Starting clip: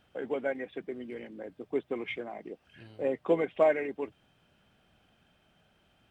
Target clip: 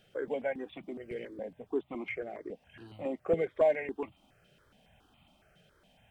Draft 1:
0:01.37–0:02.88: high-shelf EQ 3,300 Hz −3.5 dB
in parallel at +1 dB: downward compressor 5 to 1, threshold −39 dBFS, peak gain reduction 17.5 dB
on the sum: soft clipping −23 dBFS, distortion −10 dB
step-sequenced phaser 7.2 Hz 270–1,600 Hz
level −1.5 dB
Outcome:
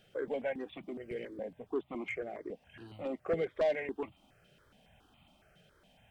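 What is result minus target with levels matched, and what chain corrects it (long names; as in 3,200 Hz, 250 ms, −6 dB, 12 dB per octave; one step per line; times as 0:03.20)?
soft clipping: distortion +13 dB
0:01.37–0:02.88: high-shelf EQ 3,300 Hz −3.5 dB
in parallel at +1 dB: downward compressor 5 to 1, threshold −39 dBFS, peak gain reduction 17.5 dB
on the sum: soft clipping −13 dBFS, distortion −23 dB
step-sequenced phaser 7.2 Hz 270–1,600 Hz
level −1.5 dB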